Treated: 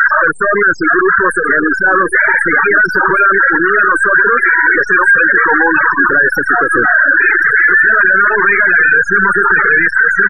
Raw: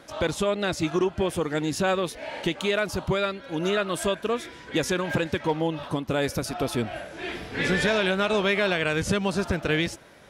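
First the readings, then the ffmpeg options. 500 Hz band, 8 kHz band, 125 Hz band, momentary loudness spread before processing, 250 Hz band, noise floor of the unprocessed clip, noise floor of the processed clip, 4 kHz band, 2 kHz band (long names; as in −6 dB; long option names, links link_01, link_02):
+8.5 dB, can't be measured, −1.5 dB, 7 LU, +7.5 dB, −46 dBFS, −19 dBFS, below −10 dB, +24.5 dB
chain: -filter_complex "[0:a]acompressor=threshold=-26dB:ratio=12,aeval=exprs='0.0631*(abs(mod(val(0)/0.0631+3,4)-2)-1)':channel_layout=same,asplit=2[link_01][link_02];[link_02]highpass=frequency=720:poles=1,volume=31dB,asoftclip=type=tanh:threshold=-23.5dB[link_03];[link_01][link_03]amix=inputs=2:normalize=0,lowpass=frequency=2000:poles=1,volume=-6dB,bandreject=frequency=220.2:width_type=h:width=4,bandreject=frequency=440.4:width_type=h:width=4,bandreject=frequency=660.6:width_type=h:width=4,bandreject=frequency=880.8:width_type=h:width=4,bandreject=frequency=1101:width_type=h:width=4,bandreject=frequency=1321.2:width_type=h:width=4,bandreject=frequency=1541.4:width_type=h:width=4,bandreject=frequency=1761.6:width_type=h:width=4,bandreject=frequency=1981.8:width_type=h:width=4,bandreject=frequency=2202:width_type=h:width=4,bandreject=frequency=2422.2:width_type=h:width=4,bandreject=frequency=2642.4:width_type=h:width=4,bandreject=frequency=2862.6:width_type=h:width=4,bandreject=frequency=3082.8:width_type=h:width=4,bandreject=frequency=3303:width_type=h:width=4,bandreject=frequency=3523.2:width_type=h:width=4,bandreject=frequency=3743.4:width_type=h:width=4,bandreject=frequency=3963.6:width_type=h:width=4,bandreject=frequency=4183.8:width_type=h:width=4,bandreject=frequency=4404:width_type=h:width=4,bandreject=frequency=4624.2:width_type=h:width=4,bandreject=frequency=4844.4:width_type=h:width=4,bandreject=frequency=5064.6:width_type=h:width=4,bandreject=frequency=5284.8:width_type=h:width=4,bandreject=frequency=5505:width_type=h:width=4,bandreject=frequency=5725.2:width_type=h:width=4,bandreject=frequency=5945.4:width_type=h:width=4,bandreject=frequency=6165.6:width_type=h:width=4,bandreject=frequency=6385.8:width_type=h:width=4,bandreject=frequency=6606:width_type=h:width=4,bandreject=frequency=6826.2:width_type=h:width=4,bandreject=frequency=7046.4:width_type=h:width=4,aexciter=amount=13.3:drive=4.3:freq=5100,aecho=1:1:1074|2148|3222|4296:0.531|0.149|0.0416|0.0117,aeval=exprs='(tanh(31.6*val(0)+0.3)-tanh(0.3))/31.6':channel_layout=same,equalizer=frequency=250:width_type=o:width=0.67:gain=-3,equalizer=frequency=630:width_type=o:width=0.67:gain=-9,equalizer=frequency=1600:width_type=o:width=0.67:gain=12,equalizer=frequency=6300:width_type=o:width=0.67:gain=-5,acontrast=29,afftfilt=real='re*gte(hypot(re,im),0.1)':imag='im*gte(hypot(re,im),0.1)':win_size=1024:overlap=0.75,acrossover=split=340 3200:gain=0.178 1 0.1[link_04][link_05][link_06];[link_04][link_05][link_06]amix=inputs=3:normalize=0,alimiter=level_in=25dB:limit=-1dB:release=50:level=0:latency=1,volume=-1dB"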